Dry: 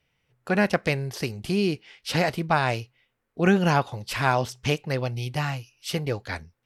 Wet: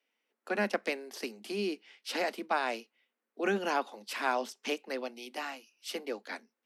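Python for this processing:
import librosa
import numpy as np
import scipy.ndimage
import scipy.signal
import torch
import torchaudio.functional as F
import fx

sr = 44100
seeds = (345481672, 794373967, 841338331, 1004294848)

y = scipy.signal.sosfilt(scipy.signal.butter(16, 210.0, 'highpass', fs=sr, output='sos'), x)
y = F.gain(torch.from_numpy(y), -7.5).numpy()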